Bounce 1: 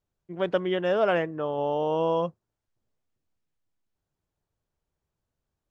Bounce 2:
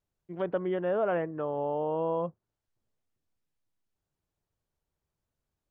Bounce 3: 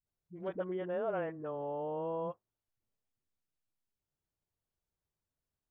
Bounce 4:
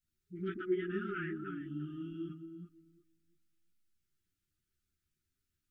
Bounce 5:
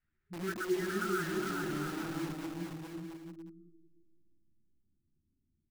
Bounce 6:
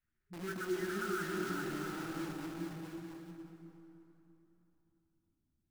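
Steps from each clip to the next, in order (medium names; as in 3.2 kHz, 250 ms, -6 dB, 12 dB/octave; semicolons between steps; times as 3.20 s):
low-pass that closes with the level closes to 1.5 kHz, closed at -25 dBFS; in parallel at +1 dB: peak limiter -21 dBFS, peak gain reduction 7.5 dB; on the sum: trim -9 dB
phase dispersion highs, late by 66 ms, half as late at 320 Hz; trim -7 dB
filtered feedback delay 350 ms, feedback 19%, low-pass 1.1 kHz, level -8 dB; FFT band-reject 400–1200 Hz; three-phase chorus; trim +8 dB
low-pass sweep 1.8 kHz -> 260 Hz, 0.44–4.24 s; in parallel at -3 dB: integer overflow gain 40 dB; on the sum: bouncing-ball echo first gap 410 ms, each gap 0.65×, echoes 5
plate-style reverb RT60 3.4 s, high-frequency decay 0.7×, DRR 4.5 dB; trim -4 dB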